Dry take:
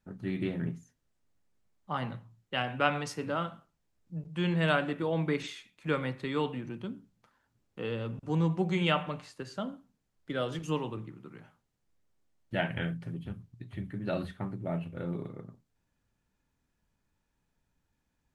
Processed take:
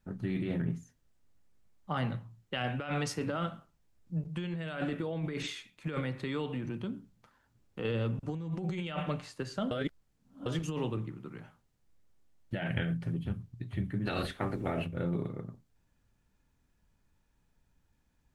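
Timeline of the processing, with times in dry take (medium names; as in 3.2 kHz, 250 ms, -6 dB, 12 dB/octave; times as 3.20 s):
6.00–7.85 s: compression 2.5:1, threshold -36 dBFS
9.71–10.46 s: reverse
14.05–14.85 s: spectral peaks clipped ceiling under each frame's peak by 18 dB
whole clip: dynamic bell 970 Hz, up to -6 dB, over -50 dBFS, Q 3.8; compressor with a negative ratio -34 dBFS, ratio -1; bass shelf 100 Hz +6.5 dB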